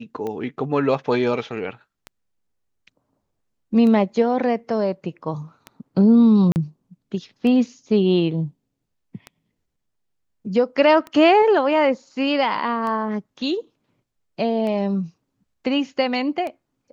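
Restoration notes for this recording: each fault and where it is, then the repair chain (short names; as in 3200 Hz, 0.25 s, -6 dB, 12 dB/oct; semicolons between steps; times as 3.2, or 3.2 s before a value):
tick 33 1/3 rpm -18 dBFS
6.52–6.56 gap 39 ms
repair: de-click; interpolate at 6.52, 39 ms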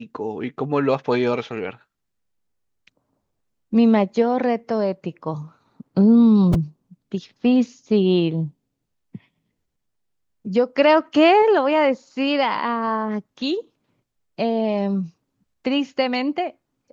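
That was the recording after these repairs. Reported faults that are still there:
none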